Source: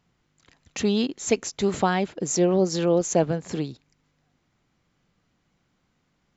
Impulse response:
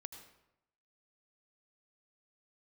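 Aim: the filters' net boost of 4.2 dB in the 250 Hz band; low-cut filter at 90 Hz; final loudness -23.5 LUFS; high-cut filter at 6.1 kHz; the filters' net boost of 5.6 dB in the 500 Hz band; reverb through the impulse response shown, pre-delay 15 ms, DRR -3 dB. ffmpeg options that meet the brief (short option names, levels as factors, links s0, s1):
-filter_complex "[0:a]highpass=90,lowpass=6100,equalizer=f=250:t=o:g=4.5,equalizer=f=500:t=o:g=5.5,asplit=2[s0][s1];[1:a]atrim=start_sample=2205,adelay=15[s2];[s1][s2]afir=irnorm=-1:irlink=0,volume=2.37[s3];[s0][s3]amix=inputs=2:normalize=0,volume=0.376"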